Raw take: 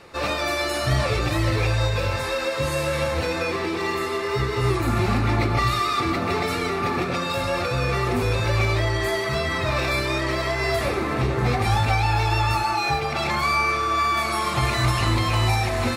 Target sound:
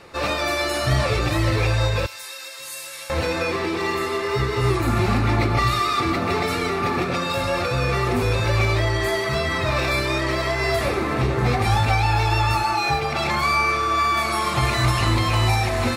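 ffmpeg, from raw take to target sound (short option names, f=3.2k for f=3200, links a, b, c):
-filter_complex "[0:a]asettb=1/sr,asplit=3[a][b][c];[a]atrim=end=2.064[d];[b]atrim=start=2.06:end=3.1,asetpts=PTS-STARTPTS,afade=t=in:d=0.004:c=qsin,afade=t=out:st=1.036:d=0.004:c=qsin,aderivative[e];[c]atrim=start=3.096[f];[d][e]acrossfade=d=0.004:c1=hsin:c2=qsin[g];[g][f]acrossfade=d=0.004:c1=qsin:c2=hsin,volume=1.5dB"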